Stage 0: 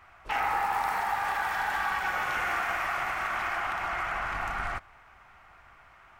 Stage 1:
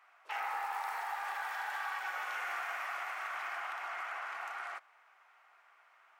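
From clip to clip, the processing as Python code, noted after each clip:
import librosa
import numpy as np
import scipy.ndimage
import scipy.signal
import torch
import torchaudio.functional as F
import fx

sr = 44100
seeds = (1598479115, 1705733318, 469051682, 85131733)

y = scipy.signal.sosfilt(scipy.signal.bessel(6, 640.0, 'highpass', norm='mag', fs=sr, output='sos'), x)
y = F.gain(torch.from_numpy(y), -8.0).numpy()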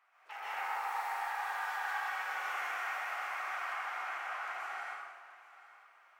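y = x + 10.0 ** (-17.5 / 20.0) * np.pad(x, (int(828 * sr / 1000.0), 0))[:len(x)]
y = fx.rev_plate(y, sr, seeds[0], rt60_s=1.4, hf_ratio=0.85, predelay_ms=115, drr_db=-8.0)
y = F.gain(torch.from_numpy(y), -7.5).numpy()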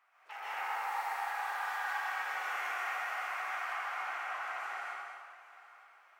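y = x + 10.0 ** (-7.0 / 20.0) * np.pad(x, (int(216 * sr / 1000.0), 0))[:len(x)]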